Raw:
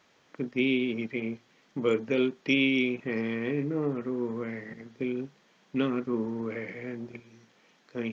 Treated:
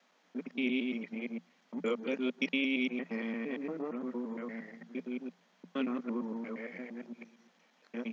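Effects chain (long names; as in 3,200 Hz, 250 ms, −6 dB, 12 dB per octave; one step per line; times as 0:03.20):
reversed piece by piece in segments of 115 ms
Chebyshev high-pass with heavy ripple 170 Hz, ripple 6 dB
parametric band 390 Hz −4.5 dB 1.8 octaves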